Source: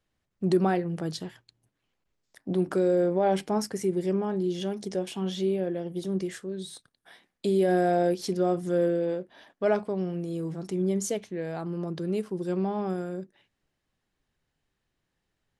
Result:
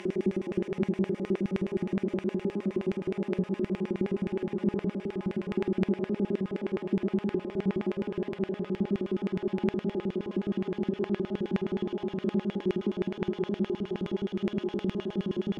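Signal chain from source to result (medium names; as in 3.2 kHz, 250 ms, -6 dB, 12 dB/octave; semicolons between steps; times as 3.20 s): Paulstretch 47×, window 1.00 s, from 4.06 s; LFO band-pass square 9.6 Hz 250–2400 Hz; trim +5.5 dB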